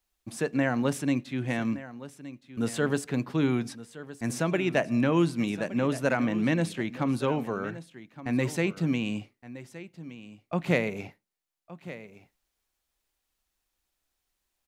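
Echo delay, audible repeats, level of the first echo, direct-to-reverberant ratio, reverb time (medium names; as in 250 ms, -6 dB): 1168 ms, 1, -15.5 dB, no reverb, no reverb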